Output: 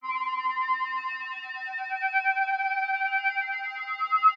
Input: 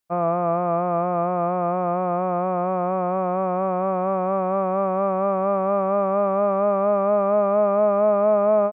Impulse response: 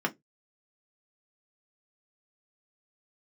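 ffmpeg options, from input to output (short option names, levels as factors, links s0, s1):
-af "aecho=1:1:502|1004|1506|2008:0.316|0.13|0.0532|0.0218,asetrate=88200,aresample=44100,afftfilt=real='re*3.46*eq(mod(b,12),0)':imag='im*3.46*eq(mod(b,12),0)':win_size=2048:overlap=0.75,volume=0.75"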